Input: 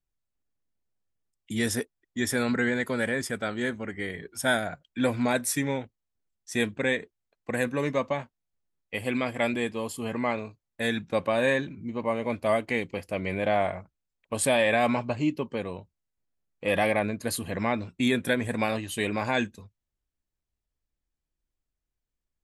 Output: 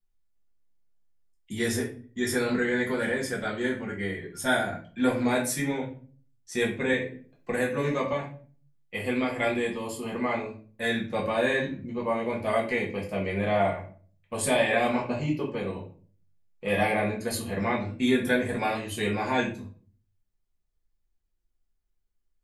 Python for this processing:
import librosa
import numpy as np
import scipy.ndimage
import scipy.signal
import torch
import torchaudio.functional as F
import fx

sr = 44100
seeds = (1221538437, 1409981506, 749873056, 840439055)

y = fx.room_shoebox(x, sr, seeds[0], volume_m3=32.0, walls='mixed', distance_m=0.89)
y = fx.band_squash(y, sr, depth_pct=40, at=(6.93, 8.13))
y = F.gain(torch.from_numpy(y), -5.5).numpy()